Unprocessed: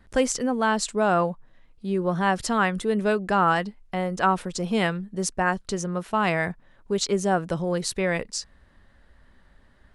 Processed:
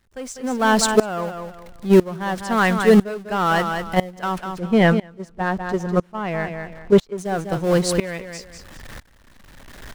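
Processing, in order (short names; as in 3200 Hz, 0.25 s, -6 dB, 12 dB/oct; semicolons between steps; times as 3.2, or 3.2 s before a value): zero-crossing step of -31 dBFS; 4.38–7.18 LPF 1500 Hz 6 dB/oct; gate -24 dBFS, range -10 dB; sample leveller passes 1; AGC gain up to 9 dB; feedback echo 0.198 s, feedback 19%, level -10.5 dB; dB-ramp tremolo swelling 1 Hz, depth 22 dB; gain +2.5 dB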